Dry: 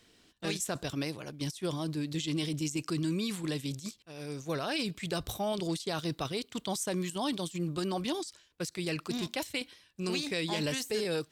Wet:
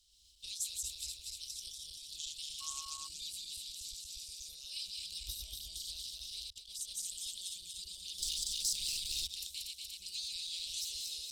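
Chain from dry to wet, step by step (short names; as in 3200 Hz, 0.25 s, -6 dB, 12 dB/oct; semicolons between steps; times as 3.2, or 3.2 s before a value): regenerating reverse delay 0.119 s, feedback 76%, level -2.5 dB; recorder AGC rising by 15 dB/s; 6.5–6.92 gate -31 dBFS, range -42 dB; 8.18–9.27 sample leveller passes 3; inverse Chebyshev band-stop 130–1900 Hz, stop band 40 dB; 2.6–3.06 whine 1100 Hz -47 dBFS; gain -3 dB; Nellymoser 88 kbps 44100 Hz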